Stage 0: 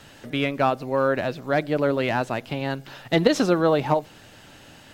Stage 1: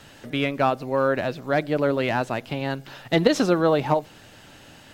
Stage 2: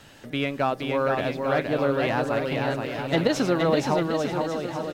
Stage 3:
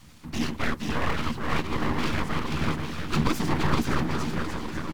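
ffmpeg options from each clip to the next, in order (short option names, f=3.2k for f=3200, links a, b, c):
-af anull
-filter_complex "[0:a]asplit=2[a][b];[b]alimiter=limit=-13dB:level=0:latency=1,volume=-2.5dB[c];[a][c]amix=inputs=2:normalize=0,aecho=1:1:470|846|1147|1387|1580:0.631|0.398|0.251|0.158|0.1,volume=-7dB"
-filter_complex "[0:a]afftfilt=real='hypot(re,im)*cos(2*PI*random(0))':imag='hypot(re,im)*sin(2*PI*random(1))':win_size=512:overlap=0.75,acrossover=split=330[a][b];[a]asplit=2[c][d];[d]adelay=13,volume=-2dB[e];[c][e]amix=inputs=2:normalize=0[f];[b]aeval=exprs='abs(val(0))':c=same[g];[f][g]amix=inputs=2:normalize=0,volume=5.5dB"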